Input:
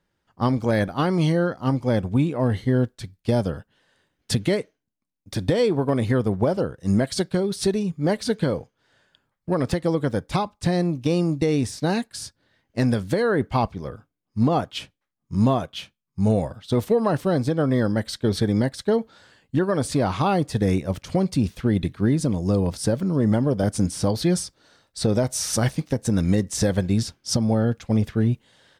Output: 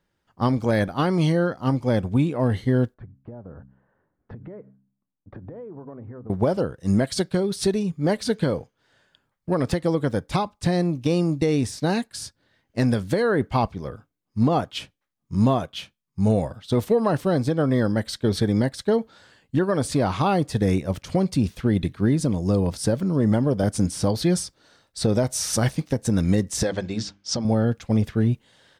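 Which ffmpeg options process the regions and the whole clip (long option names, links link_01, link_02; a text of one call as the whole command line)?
ffmpeg -i in.wav -filter_complex "[0:a]asettb=1/sr,asplit=3[link_01][link_02][link_03];[link_01]atrim=end=2.944[link_04];[link_02]atrim=start=2.94:end=6.3,asetpts=PTS-STARTPTS,afade=type=in:duration=0.004:curve=qsin,afade=type=out:start_time=3.356:duration=0.004:curve=qsin,lowpass=frequency=1400:width=0.5412,lowpass=frequency=1400:width=1.3066,bandreject=frequency=66.16:width_type=h:width=4,bandreject=frequency=132.32:width_type=h:width=4,bandreject=frequency=198.48:width_type=h:width=4,bandreject=frequency=264.64:width_type=h:width=4,acompressor=threshold=-36dB:ratio=8:attack=3.2:release=140:knee=1:detection=peak[link_05];[link_03]atrim=start=6.296[link_06];[link_04][link_05]acrossfade=duration=0.004:curve1=hsin:curve2=qsin[link_07];[link_07][link_06]acrossfade=duration=0.004:curve1=qsin:curve2=hsin,asettb=1/sr,asplit=3[link_08][link_09][link_10];[link_08]atrim=end=26.634[link_11];[link_09]atrim=start=26.63:end=27.45,asetpts=PTS-STARTPTS,afade=type=in:duration=0.004:curve=qsin,afade=type=out:start_time=0.816:duration=0.004:curve=qsin,lowpass=frequency=6900:width=0.5412,lowpass=frequency=6900:width=1.3066,lowshelf=frequency=190:gain=-11.5,bandreject=frequency=50:width_type=h:width=6,bandreject=frequency=100:width_type=h:width=6,bandreject=frequency=150:width_type=h:width=6,bandreject=frequency=200:width_type=h:width=6,bandreject=frequency=250:width_type=h:width=6,bandreject=frequency=300:width_type=h:width=6[link_12];[link_10]atrim=start=27.446[link_13];[link_11][link_12]acrossfade=duration=0.004:curve1=hsin:curve2=qsin[link_14];[link_14][link_13]acrossfade=duration=0.004:curve1=qsin:curve2=hsin" out.wav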